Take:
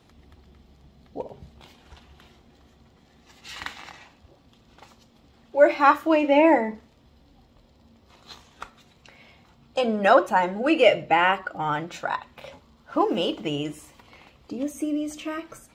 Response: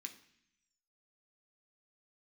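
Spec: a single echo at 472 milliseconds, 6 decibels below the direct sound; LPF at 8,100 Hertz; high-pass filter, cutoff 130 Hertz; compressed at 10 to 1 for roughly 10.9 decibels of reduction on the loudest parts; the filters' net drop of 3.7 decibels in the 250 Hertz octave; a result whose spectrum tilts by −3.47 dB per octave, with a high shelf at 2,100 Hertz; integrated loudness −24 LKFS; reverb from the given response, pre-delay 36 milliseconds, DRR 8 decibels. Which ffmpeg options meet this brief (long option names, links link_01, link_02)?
-filter_complex "[0:a]highpass=130,lowpass=8100,equalizer=frequency=250:width_type=o:gain=-5,highshelf=frequency=2100:gain=6,acompressor=threshold=-21dB:ratio=10,aecho=1:1:472:0.501,asplit=2[link_01][link_02];[1:a]atrim=start_sample=2205,adelay=36[link_03];[link_02][link_03]afir=irnorm=-1:irlink=0,volume=-3dB[link_04];[link_01][link_04]amix=inputs=2:normalize=0,volume=4.5dB"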